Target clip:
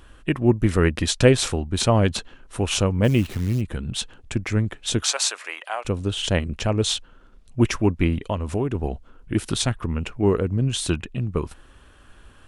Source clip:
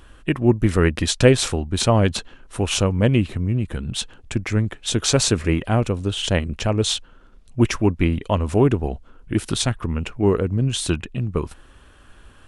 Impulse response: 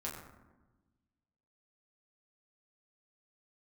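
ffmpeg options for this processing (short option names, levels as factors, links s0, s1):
-filter_complex "[0:a]asplit=3[s0][s1][s2];[s0]afade=t=out:st=3.03:d=0.02[s3];[s1]acrusher=bits=7:dc=4:mix=0:aa=0.000001,afade=t=in:st=3.03:d=0.02,afade=t=out:st=3.6:d=0.02[s4];[s2]afade=t=in:st=3.6:d=0.02[s5];[s3][s4][s5]amix=inputs=3:normalize=0,asettb=1/sr,asplit=3[s6][s7][s8];[s6]atrim=end=5.024[s9];[s7]atrim=start=5.02:end=5.85,asetpts=PTS-STARTPTS,afade=t=in:d=0.004:c=qsin,afade=t=out:st=0.826:d=0.004:c=qsin,highpass=f=710:w=0.5412,highpass=f=710:w=1.3066[s10];[s8]atrim=start=5.846[s11];[s9][s10]acrossfade=d=0.004:c1=hsin:c2=qsin[s12];[s12][s11]acrossfade=d=0.004:c1=qsin:c2=hsin,asettb=1/sr,asplit=3[s13][s14][s15];[s13]atrim=end=8.174[s16];[s14]atrim=start=8.17:end=8.75,asetpts=PTS-STARTPTS,afade=t=in:d=0.004:c=qsin,afade=t=out:st=0.576:d=0.004:c=qsin,acompressor=threshold=0.0891:ratio=3[s17];[s15]atrim=start=8.746[s18];[s16][s17]acrossfade=d=0.004:c1=hsin:c2=qsin[s19];[s19][s18]acrossfade=d=0.004:c1=qsin:c2=hsin,volume=0.841"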